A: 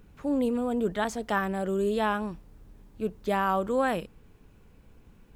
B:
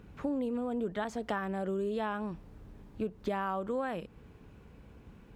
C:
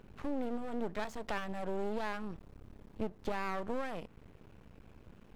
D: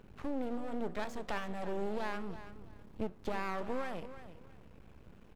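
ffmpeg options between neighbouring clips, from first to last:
-af "highshelf=f=5.7k:g=-11.5,acompressor=threshold=-35dB:ratio=6,highpass=47,volume=4dB"
-af "aeval=exprs='max(val(0),0)':c=same,volume=1dB"
-af "flanger=delay=9.3:depth=6.6:regen=-89:speed=1.3:shape=sinusoidal,aecho=1:1:331|662|993:0.224|0.0515|0.0118,volume=4dB"

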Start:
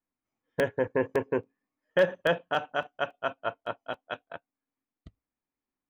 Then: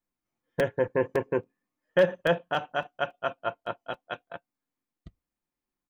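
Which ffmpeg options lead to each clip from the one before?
-af "lowshelf=f=130:g=5,aecho=1:1:5.7:0.31"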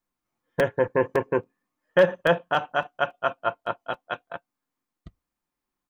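-af "equalizer=f=1.1k:t=o:w=0.99:g=5,volume=2.5dB"

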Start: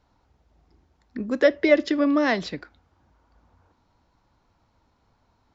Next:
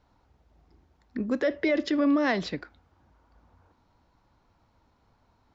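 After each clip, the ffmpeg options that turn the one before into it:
-af "highshelf=f=5.6k:g=-5,alimiter=limit=-17dB:level=0:latency=1:release=34"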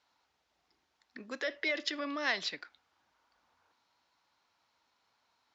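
-af "bandpass=f=4.4k:t=q:w=0.64:csg=0,volume=2.5dB"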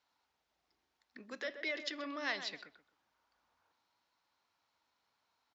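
-filter_complex "[0:a]asplit=2[a][b];[b]adelay=129,lowpass=f=1.4k:p=1,volume=-8.5dB,asplit=2[c][d];[d]adelay=129,lowpass=f=1.4k:p=1,volume=0.26,asplit=2[e][f];[f]adelay=129,lowpass=f=1.4k:p=1,volume=0.26[g];[a][c][e][g]amix=inputs=4:normalize=0,volume=-5.5dB"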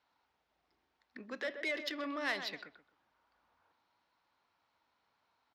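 -filter_complex "[0:a]asplit=2[a][b];[b]asoftclip=type=tanh:threshold=-39.5dB,volume=-4dB[c];[a][c]amix=inputs=2:normalize=0,adynamicsmooth=sensitivity=4.5:basefreq=4.3k"

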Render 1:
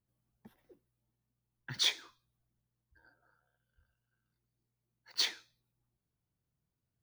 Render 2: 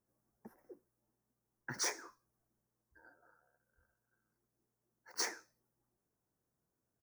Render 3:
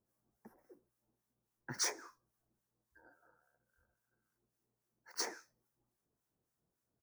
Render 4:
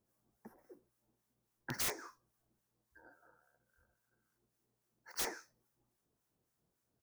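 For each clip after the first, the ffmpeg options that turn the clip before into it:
-af "firequalizer=gain_entry='entry(120,0);entry(220,8);entry(380,13);entry(1700,8);entry(3400,-20);entry(5400,8)':delay=0.05:min_phase=1,volume=-6dB"
-filter_complex "[0:a]acrossover=split=1000[a][b];[a]aeval=exprs='val(0)*(1-0.7/2+0.7/2*cos(2*PI*3.6*n/s))':c=same[c];[b]aeval=exprs='val(0)*(1-0.7/2-0.7/2*cos(2*PI*3.6*n/s))':c=same[d];[c][d]amix=inputs=2:normalize=0,volume=2.5dB"
-af "aeval=exprs='(mod(42.2*val(0)+1,2)-1)/42.2':c=same,volume=3dB"

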